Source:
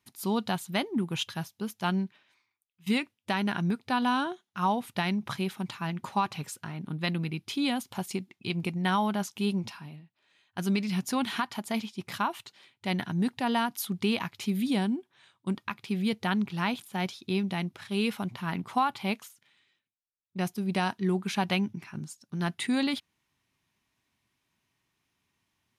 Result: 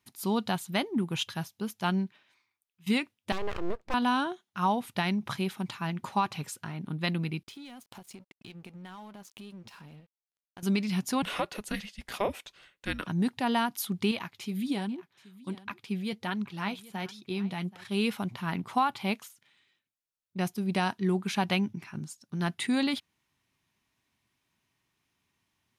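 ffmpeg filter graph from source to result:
-filter_complex "[0:a]asettb=1/sr,asplit=3[a][b][c];[a]atrim=end=3.324[d];[b]atrim=start=3.32:end=3.94,asetpts=PTS-STARTPTS,afade=t=in:d=0.004:c=qsin,afade=t=out:st=0.616:d=0.004:c=qsin,lowpass=f=1k:p=1,aeval=exprs='abs(val(0))':c=same[e];[c]atrim=start=3.936[f];[d][e]acrossfade=d=0.004:c1=hsin:c2=qsin[g];[g][f]acrossfade=d=0.004:c1=qsin:c2=hsin,asettb=1/sr,asplit=3[h][i][j];[h]atrim=end=7.434[k];[i]atrim=start=7.43:end=10.63,asetpts=PTS-STARTPTS,afade=t=in:d=0.004:c=qsin,afade=t=out:st=3.196:d=0.004:c=qsin,acompressor=threshold=-43dB:ratio=5:attack=3.2:release=140:knee=1:detection=peak,aeval=exprs='sgn(val(0))*max(abs(val(0))-0.0015,0)':c=same[l];[j]atrim=start=10.626[m];[k][l]acrossfade=d=0.004:c1=hsin:c2=qsin[n];[n][m]acrossfade=d=0.004:c1=qsin:c2=hsin,asettb=1/sr,asplit=3[o][p][q];[o]atrim=end=11.224[r];[p]atrim=start=11.22:end=13.07,asetpts=PTS-STARTPTS,afade=t=in:d=0.004:c=qsin,afade=t=out:st=1.846:d=0.004:c=qsin,highpass=360,afreqshift=-420[s];[q]atrim=start=13.066[t];[r][s]acrossfade=d=0.004:c1=hsin:c2=qsin[u];[u][t]acrossfade=d=0.004:c1=qsin:c2=hsin,asettb=1/sr,asplit=3[v][w][x];[v]atrim=end=14.114[y];[w]atrim=start=14.11:end=17.85,asetpts=PTS-STARTPTS,afade=t=in:d=0.004:c=qsin,afade=t=out:st=3.736:d=0.004:c=qsin,flanger=delay=0.7:depth=6.4:regen=54:speed=1.3:shape=triangular,aecho=1:1:777:0.106,atrim=end_sample=164934[z];[x]atrim=start=17.846[aa];[y][z]acrossfade=d=0.004:c1=hsin:c2=qsin[ab];[ab][aa]acrossfade=d=0.004:c1=qsin:c2=hsin"

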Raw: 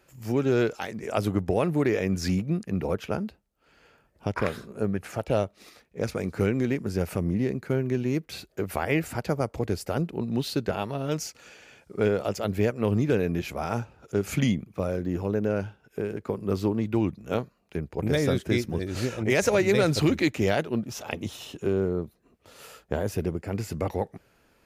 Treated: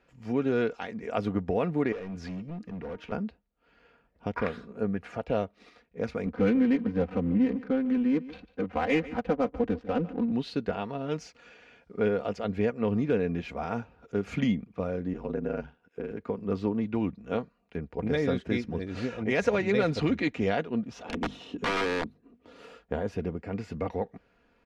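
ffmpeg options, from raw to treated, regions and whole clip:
-filter_complex "[0:a]asettb=1/sr,asplit=3[a][b][c];[a]atrim=end=1.924[d];[b]atrim=start=1.92:end=3.12,asetpts=PTS-STARTPTS,afade=t=in:d=0.004:c=qsin,afade=t=out:st=1.196:d=0.004:c=qsin,bandreject=f=309.4:t=h:w=4,bandreject=f=618.8:t=h:w=4,bandreject=f=928.2:t=h:w=4,bandreject=f=1.2376k:t=h:w=4,bandreject=f=1.547k:t=h:w=4,bandreject=f=1.8564k:t=h:w=4,bandreject=f=2.1658k:t=h:w=4,bandreject=f=2.4752k:t=h:w=4,bandreject=f=2.7846k:t=h:w=4,bandreject=f=3.094k:t=h:w=4,bandreject=f=3.4034k:t=h:w=4,bandreject=f=3.7128k:t=h:w=4,bandreject=f=4.0222k:t=h:w=4,bandreject=f=4.3316k:t=h:w=4,bandreject=f=4.641k:t=h:w=4,bandreject=f=4.9504k:t=h:w=4,bandreject=f=5.2598k:t=h:w=4,bandreject=f=5.5692k:t=h:w=4,bandreject=f=5.8786k:t=h:w=4,bandreject=f=6.188k:t=h:w=4,bandreject=f=6.4974k:t=h:w=4,bandreject=f=6.8068k:t=h:w=4,bandreject=f=7.1162k:t=h:w=4,bandreject=f=7.4256k:t=h:w=4,bandreject=f=7.735k:t=h:w=4,bandreject=f=8.0444k:t=h:w=4,bandreject=f=8.3538k:t=h:w=4,bandreject=f=8.6632k:t=h:w=4,bandreject=f=8.9726k:t=h:w=4,bandreject=f=9.282k:t=h:w=4,acompressor=threshold=-36dB:ratio=1.5:attack=3.2:release=140:knee=1:detection=peak,volume=31dB,asoftclip=hard,volume=-31dB[e];[c]atrim=start=3.116[f];[d][e]acrossfade=d=0.004:c1=hsin:c2=qsin[g];[g][f]acrossfade=d=0.004:c1=qsin:c2=hsin,asettb=1/sr,asplit=3[h][i][j];[h]atrim=end=6.264[k];[i]atrim=start=6.26:end=10.32,asetpts=PTS-STARTPTS,afade=t=in:d=0.004:c=qsin,afade=t=out:st=4.056:d=0.004:c=qsin,aecho=1:1:3.9:0.99,atrim=end_sample=179046,adynamicsmooth=sensitivity=5.5:basefreq=640,aecho=1:1:147:0.133,atrim=end_sample=179046[l];[j]atrim=start=10.316[m];[k][l]acrossfade=d=0.004:c1=hsin:c2=qsin[n];[n][m]acrossfade=d=0.004:c1=qsin:c2=hsin,asettb=1/sr,asplit=3[o][p][q];[o]atrim=end=15.134[r];[p]atrim=start=15.13:end=16.11,asetpts=PTS-STARTPTS,afade=t=in:d=0.004:c=qsin,afade=t=out:st=0.976:d=0.004:c=qsin,highpass=120,aeval=exprs='val(0)*sin(2*PI*40*n/s)':c=same[s];[q]atrim=start=16.106[t];[r][s]acrossfade=d=0.004:c1=hsin:c2=qsin[u];[u][t]acrossfade=d=0.004:c1=qsin:c2=hsin,asettb=1/sr,asplit=3[v][w][x];[v]atrim=end=21.044[y];[w]atrim=start=21.04:end=22.77,asetpts=PTS-STARTPTS,afade=t=in:d=0.004:c=qsin,afade=t=out:st=1.726:d=0.004:c=qsin,equalizer=f=280:t=o:w=1.2:g=10.5,aeval=exprs='(mod(8.41*val(0)+1,2)-1)/8.41':c=same,bandreject=f=50:t=h:w=6,bandreject=f=100:t=h:w=6,bandreject=f=150:t=h:w=6,bandreject=f=200:t=h:w=6,bandreject=f=250:t=h:w=6[z];[x]atrim=start=22.766[aa];[y][z]acrossfade=d=0.004:c1=hsin:c2=qsin[ab];[ab][aa]acrossfade=d=0.004:c1=qsin:c2=hsin,lowpass=3.3k,aecho=1:1:4.2:0.45,volume=-3.5dB"

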